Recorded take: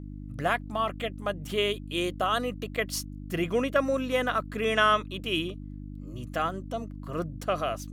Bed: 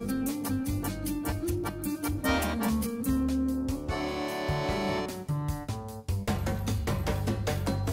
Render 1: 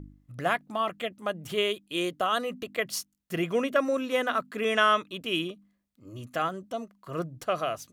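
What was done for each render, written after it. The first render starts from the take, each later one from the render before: de-hum 50 Hz, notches 6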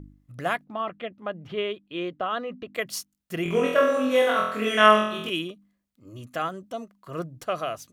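0.64–2.75 air absorption 290 m; 3.43–5.3 flutter echo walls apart 4 m, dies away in 0.75 s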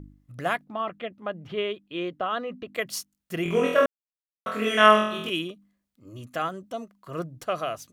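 3.86–4.46 mute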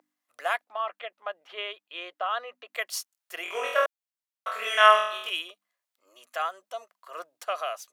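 HPF 630 Hz 24 dB/oct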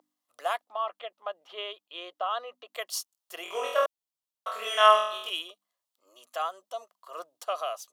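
band shelf 1900 Hz -8 dB 1 oct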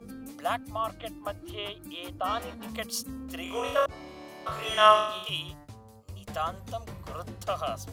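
add bed -12.5 dB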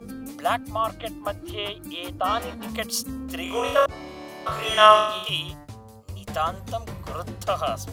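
gain +6 dB; limiter -1 dBFS, peak gain reduction 1.5 dB

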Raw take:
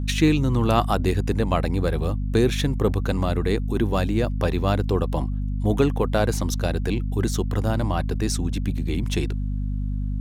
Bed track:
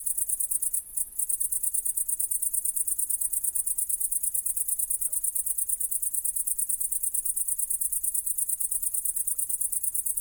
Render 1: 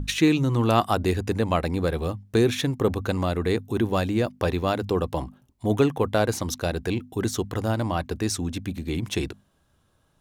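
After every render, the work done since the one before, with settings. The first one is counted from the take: notches 50/100/150/200/250 Hz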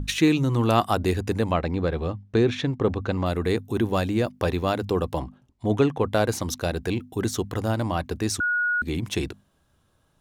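1.51–3.26 air absorption 130 m; 5.19–6.12 air absorption 60 m; 8.4–8.82 bleep 1450 Hz -20.5 dBFS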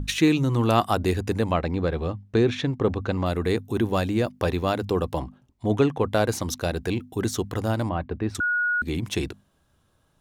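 7.89–8.35 air absorption 460 m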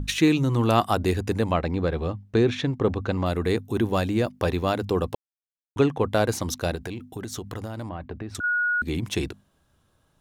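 5.15–5.76 mute; 6.75–8.44 compressor 12:1, threshold -29 dBFS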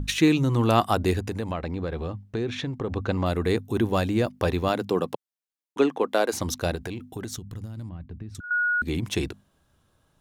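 1.19–2.92 compressor 2.5:1, threshold -28 dBFS; 4.68–6.32 HPF 120 Hz -> 290 Hz 24 dB/oct; 7.36–8.51 EQ curve 180 Hz 0 dB, 320 Hz -9 dB, 670 Hz -17 dB, 6600 Hz -7 dB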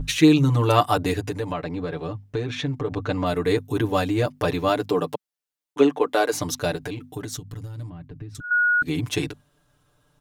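bell 200 Hz -8 dB 0.28 oct; comb 6.8 ms, depth 92%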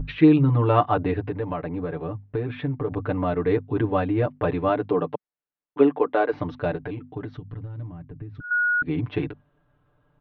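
Gaussian blur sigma 3.6 samples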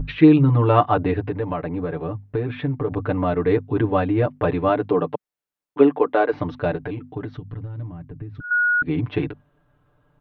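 gain +3 dB

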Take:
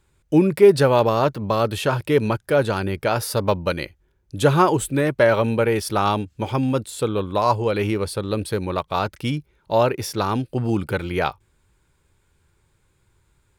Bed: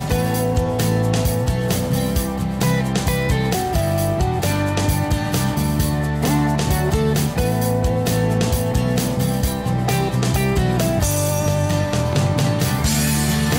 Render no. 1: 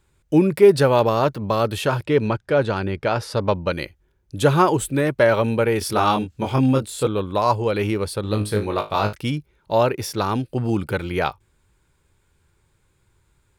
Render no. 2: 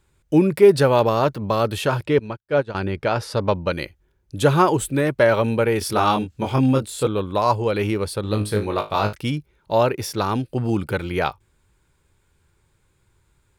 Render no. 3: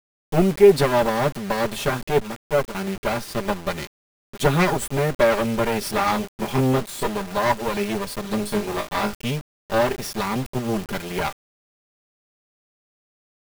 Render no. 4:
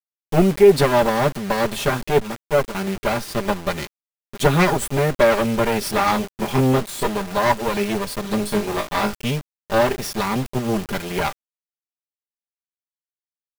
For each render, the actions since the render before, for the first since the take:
2.04–3.73 air absorption 81 m; 5.79–7.07 doubler 23 ms -3 dB; 8.21–9.13 flutter echo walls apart 3.3 m, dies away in 0.24 s
2.19–2.75 upward expander 2.5:1, over -35 dBFS
minimum comb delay 5 ms; requantised 6-bit, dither none
gain +2.5 dB; limiter -3 dBFS, peak gain reduction 3 dB

